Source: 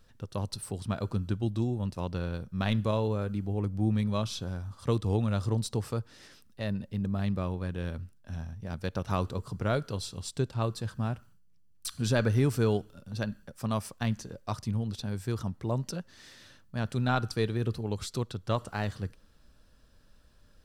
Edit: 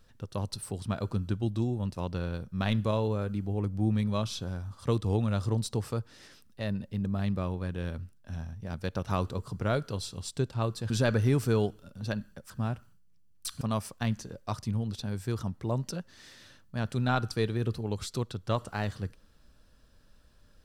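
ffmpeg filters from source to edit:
-filter_complex "[0:a]asplit=4[a][b][c][d];[a]atrim=end=10.902[e];[b]atrim=start=12.008:end=13.612[f];[c]atrim=start=10.898:end=12.012[g];[d]atrim=start=13.608[h];[e][f]acrossfade=d=0.004:c1=hsin:c2=hsin[i];[i][g]acrossfade=d=0.004:c1=hsin:c2=hsin[j];[j][h]acrossfade=d=0.004:c1=hsin:c2=hsin"

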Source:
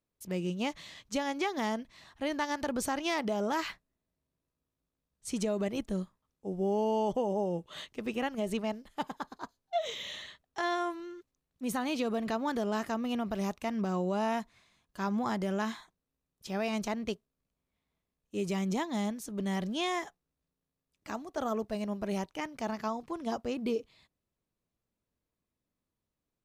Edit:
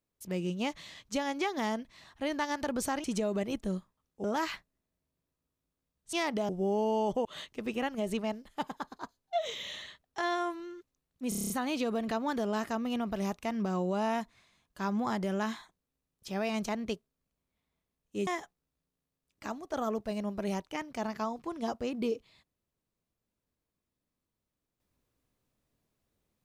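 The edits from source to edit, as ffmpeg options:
-filter_complex "[0:a]asplit=14[a][b][c][d][e][f][g][h][i][j][k][l][m][n];[a]atrim=end=3.042[o];[b]atrim=start=5.288:end=6.492[p];[c]atrim=start=3.398:end=5.292[q];[d]atrim=start=3.038:end=3.402[r];[e]atrim=start=6.488:end=7.252[s];[f]atrim=start=7.648:end=11.722[t];[g]atrim=start=11.688:end=11.722[u];[h]atrim=start=11.688:end=11.722[v];[i]atrim=start=11.688:end=11.722[w];[j]atrim=start=11.688:end=11.722[x];[k]atrim=start=11.688:end=11.722[y];[l]atrim=start=11.688:end=11.722[z];[m]atrim=start=11.688:end=18.462[aa];[n]atrim=start=19.908[ab];[o][p]acrossfade=d=0.004:c1=hsin:c2=hsin[ac];[ac][q]acrossfade=d=0.004:c1=hsin:c2=hsin[ad];[ad][r]acrossfade=d=0.004:c1=hsin:c2=hsin[ae];[ae][s]acrossfade=d=0.004:c1=hsin:c2=hsin[af];[af][t]acrossfade=d=0.004:c1=hsin:c2=hsin[ag];[ag][u]acrossfade=d=0.004:c1=hsin:c2=hsin[ah];[ah][v]acrossfade=d=0.004:c1=hsin:c2=hsin[ai];[ai][w]acrossfade=d=0.004:c1=hsin:c2=hsin[aj];[aj][x]acrossfade=d=0.004:c1=hsin:c2=hsin[ak];[ak][y]acrossfade=d=0.004:c1=hsin:c2=hsin[al];[al][z]acrossfade=d=0.004:c1=hsin:c2=hsin[am];[am][aa]acrossfade=d=0.004:c1=hsin:c2=hsin[an];[an][ab]acrossfade=d=0.004:c1=hsin:c2=hsin"

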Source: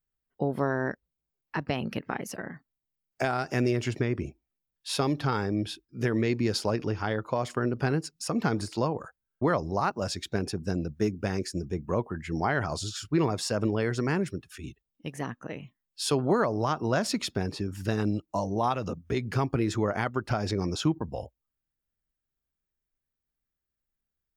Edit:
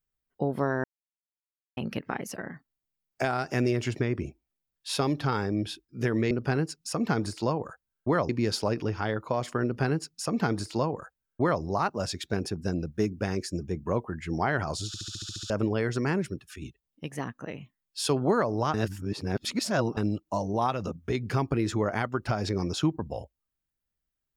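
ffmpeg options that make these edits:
-filter_complex "[0:a]asplit=16[a][b][c][d][e][f][g][h][i][j][k][l][m][n][o][p];[a]atrim=end=0.84,asetpts=PTS-STARTPTS,afade=t=out:st=0.836:d=0.004:c=hsin[q];[b]atrim=start=0.84:end=1.77,asetpts=PTS-STARTPTS,volume=0[r];[c]atrim=start=1.77:end=6.312,asetpts=PTS-STARTPTS,afade=t=in:d=0.004:c=hsin[s];[d]atrim=start=7.658:end=9.642[t];[e]atrim=start=6.308:end=12.962[u];[f]atrim=start=12.888:end=12.962[v];[g]atrim=start=12.888:end=12.962[w];[h]atrim=start=12.888:end=12.962[x];[i]atrim=start=12.888:end=12.962[y];[j]atrim=start=12.888:end=12.962[z];[k]atrim=start=12.888:end=12.962[aa];[l]atrim=start=12.888:end=12.962[ab];[m]atrim=start=12.888:end=12.962[ac];[n]atrim=start=13.518:end=16.762[ad];[o]atrim=start=16.758:end=17.992,asetpts=PTS-STARTPTS,areverse[ae];[p]atrim=start=17.988[af];[q][r][s]concat=n=3:v=0:a=1[ag];[ag][t]acrossfade=d=0.004:c1=hsin:c2=hsin[ah];[ah][u]acrossfade=d=0.004:c1=hsin:c2=hsin[ai];[ai][v]acrossfade=d=0.004:c1=hsin:c2=hsin[aj];[aj][w]acrossfade=d=0.004:c1=hsin:c2=hsin[ak];[ak][x]acrossfade=d=0.004:c1=hsin:c2=hsin[al];[al][y]acrossfade=d=0.004:c1=hsin:c2=hsin[am];[am][z]acrossfade=d=0.004:c1=hsin:c2=hsin[an];[an][aa]acrossfade=d=0.004:c1=hsin:c2=hsin[ao];[ao][ab]acrossfade=d=0.004:c1=hsin:c2=hsin[ap];[ap][ac]acrossfade=d=0.004:c1=hsin:c2=hsin[aq];[aq][ad]acrossfade=d=0.004:c1=hsin:c2=hsin[ar];[ar][ae]acrossfade=d=0.004:c1=hsin:c2=hsin[as];[as][af]acrossfade=d=0.004:c1=hsin:c2=hsin"

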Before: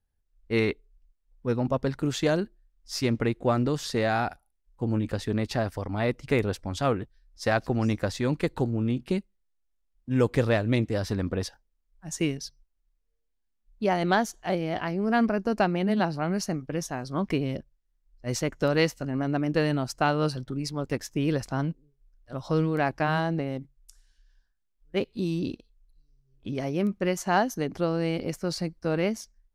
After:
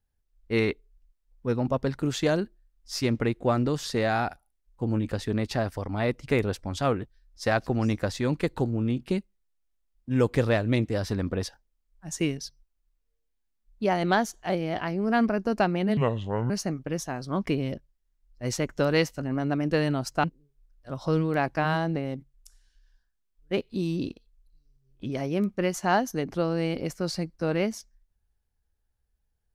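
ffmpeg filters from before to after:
-filter_complex "[0:a]asplit=4[a][b][c][d];[a]atrim=end=15.974[e];[b]atrim=start=15.97:end=16.33,asetpts=PTS-STARTPTS,asetrate=29988,aresample=44100,atrim=end_sample=23347,asetpts=PTS-STARTPTS[f];[c]atrim=start=16.326:end=20.072[g];[d]atrim=start=21.668[h];[e][f]acrossfade=d=0.004:c1=hsin:c2=hsin[i];[i][g]acrossfade=d=0.004:c1=hsin:c2=hsin[j];[j][h]acrossfade=d=0.004:c1=hsin:c2=hsin"

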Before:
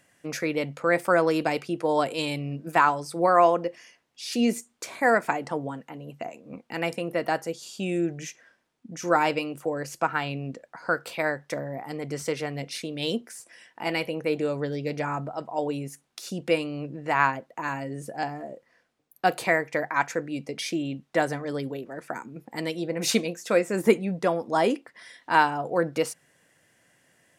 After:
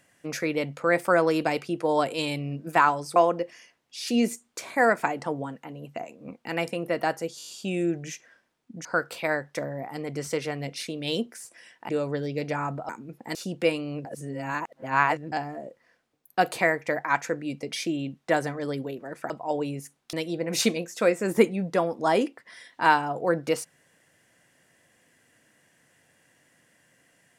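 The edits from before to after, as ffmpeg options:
-filter_complex "[0:a]asplit=15[a][b][c][d][e][f][g][h][i][j][k][l][m][n][o];[a]atrim=end=3.162[p];[b]atrim=start=3.408:end=7.652[q];[c]atrim=start=7.628:end=7.652[r];[d]atrim=start=7.628:end=7.652[s];[e]atrim=start=7.628:end=7.652[t];[f]atrim=start=7.628:end=7.652[u];[g]atrim=start=7.628:end=9.002[v];[h]atrim=start=10.798:end=13.842[w];[i]atrim=start=14.378:end=15.382[x];[j]atrim=start=22.158:end=22.622[y];[k]atrim=start=16.208:end=16.912[z];[l]atrim=start=16.908:end=18.182,asetpts=PTS-STARTPTS,areverse[aa];[m]atrim=start=18.178:end=22.162[ab];[n]atrim=start=15.378:end=16.212[ac];[o]atrim=start=22.618[ad];[p][q]acrossfade=d=0.004:c1=hsin:c2=hsin[ae];[ae][r]acrossfade=d=0.004:c1=hsin:c2=hsin[af];[af][s]acrossfade=d=0.004:c1=hsin:c2=hsin[ag];[ag][t]acrossfade=d=0.004:c1=hsin:c2=hsin[ah];[ah][u]acrossfade=d=0.004:c1=hsin:c2=hsin[ai];[ai][v]acrossfade=d=0.004:c1=hsin:c2=hsin[aj];[aj][w]acrossfade=d=0.004:c1=hsin:c2=hsin[ak];[ak][x]acrossfade=d=0.004:c1=hsin:c2=hsin[al];[al][y]acrossfade=d=0.004:c1=hsin:c2=hsin[am];[am][z]acrossfade=d=0.004:c1=hsin:c2=hsin[an];[an][aa]acrossfade=d=0.004:c1=hsin:c2=hsin[ao];[ao][ab]acrossfade=d=0.004:c1=hsin:c2=hsin[ap];[ap][ac]acrossfade=d=0.004:c1=hsin:c2=hsin[aq];[aq][ad]acrossfade=d=0.004:c1=hsin:c2=hsin"

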